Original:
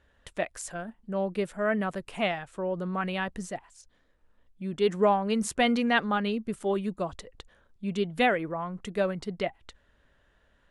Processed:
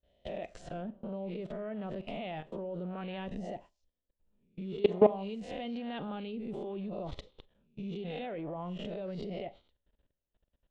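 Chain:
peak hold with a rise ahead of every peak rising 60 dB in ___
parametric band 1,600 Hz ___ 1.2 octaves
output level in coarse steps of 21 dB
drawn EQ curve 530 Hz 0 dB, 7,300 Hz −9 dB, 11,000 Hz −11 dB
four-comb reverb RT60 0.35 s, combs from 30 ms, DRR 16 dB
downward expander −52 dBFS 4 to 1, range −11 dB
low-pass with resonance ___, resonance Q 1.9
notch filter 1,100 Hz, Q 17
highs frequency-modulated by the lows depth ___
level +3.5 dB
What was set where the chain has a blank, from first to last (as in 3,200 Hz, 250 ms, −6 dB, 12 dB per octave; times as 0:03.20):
0.49 s, −12.5 dB, 3,300 Hz, 0.1 ms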